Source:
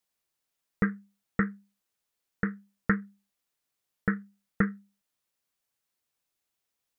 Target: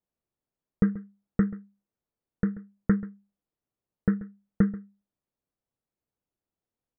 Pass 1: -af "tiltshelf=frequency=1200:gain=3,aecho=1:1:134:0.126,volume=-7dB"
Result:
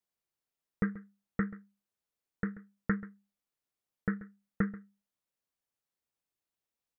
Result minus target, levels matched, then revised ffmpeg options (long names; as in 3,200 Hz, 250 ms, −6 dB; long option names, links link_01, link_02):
1,000 Hz band +8.5 dB
-af "tiltshelf=frequency=1200:gain=12.5,aecho=1:1:134:0.126,volume=-7dB"